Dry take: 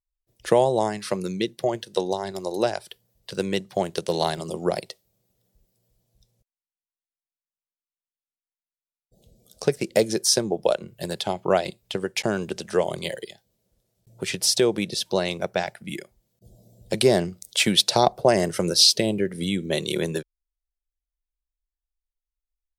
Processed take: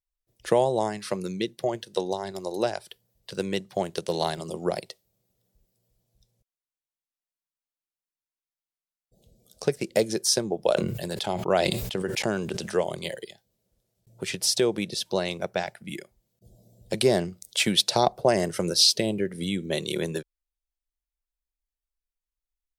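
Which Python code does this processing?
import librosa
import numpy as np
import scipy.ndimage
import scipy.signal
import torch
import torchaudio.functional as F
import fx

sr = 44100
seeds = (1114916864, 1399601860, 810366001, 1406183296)

y = fx.sustainer(x, sr, db_per_s=43.0, at=(10.6, 12.74))
y = y * librosa.db_to_amplitude(-3.0)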